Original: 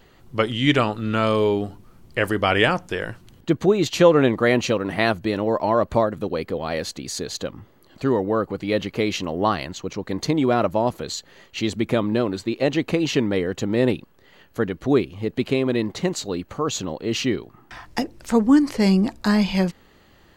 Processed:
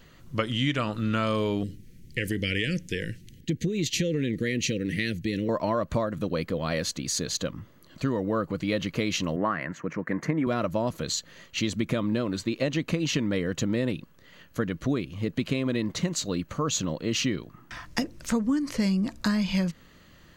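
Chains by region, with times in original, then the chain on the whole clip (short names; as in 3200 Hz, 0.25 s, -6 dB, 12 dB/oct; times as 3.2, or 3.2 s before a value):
1.63–5.49 Chebyshev band-stop 460–1900 Hz, order 3 + compressor 2.5:1, threshold -21 dBFS
9.36–10.47 HPF 150 Hz + resonant high shelf 2600 Hz -12.5 dB, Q 3
whole clip: thirty-one-band EQ 160 Hz +5 dB, 400 Hz -8 dB, 800 Hz -11 dB, 6300 Hz +4 dB; compressor 10:1, threshold -22 dBFS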